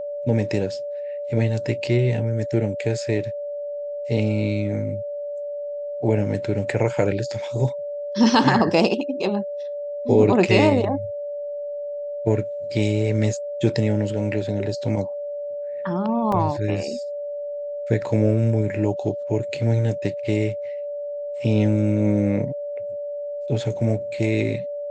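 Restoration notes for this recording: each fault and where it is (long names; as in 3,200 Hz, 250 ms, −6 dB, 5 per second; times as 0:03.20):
whistle 580 Hz −27 dBFS
0:16.32: drop-out 3.4 ms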